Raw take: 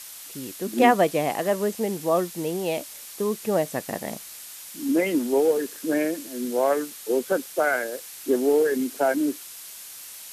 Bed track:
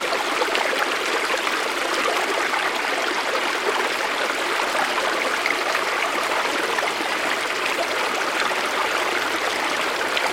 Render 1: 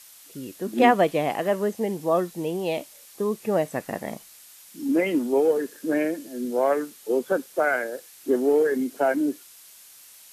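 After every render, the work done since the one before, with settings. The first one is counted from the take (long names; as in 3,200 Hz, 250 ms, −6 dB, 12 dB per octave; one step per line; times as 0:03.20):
noise reduction from a noise print 8 dB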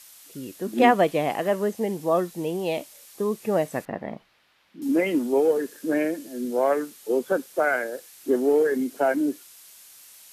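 0:03.85–0:04.82: high-frequency loss of the air 360 metres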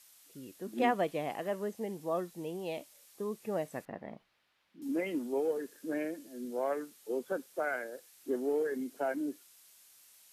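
level −11.5 dB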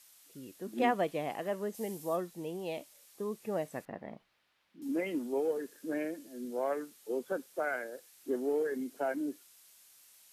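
0:01.73–0:02.15: high-shelf EQ 3,800 Hz → 6,500 Hz +11.5 dB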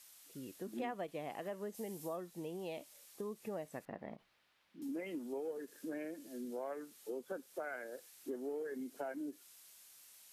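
downward compressor 3 to 1, threshold −42 dBFS, peak gain reduction 13.5 dB
every ending faded ahead of time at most 540 dB per second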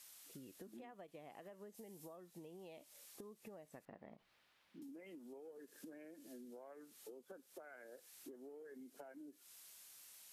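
downward compressor 12 to 1, threshold −52 dBFS, peak gain reduction 16 dB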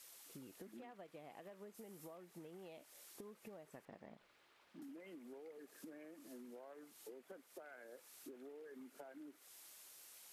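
mix in bed track −51.5 dB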